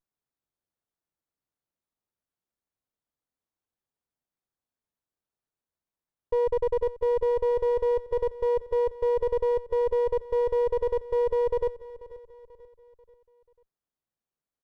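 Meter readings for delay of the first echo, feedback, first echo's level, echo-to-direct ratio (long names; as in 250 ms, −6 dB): 488 ms, 44%, −17.5 dB, −16.5 dB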